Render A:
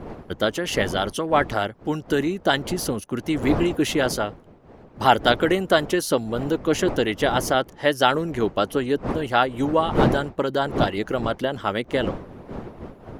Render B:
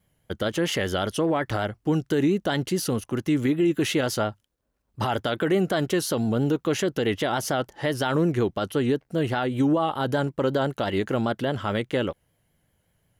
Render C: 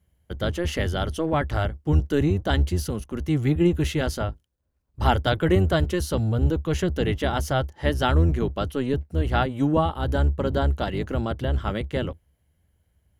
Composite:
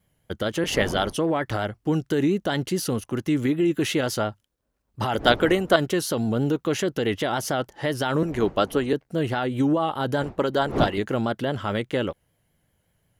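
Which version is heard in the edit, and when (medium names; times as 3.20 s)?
B
0.64–1.16 s: from A
5.14–5.76 s: from A
8.23–8.93 s: from A
10.22–10.98 s: from A
not used: C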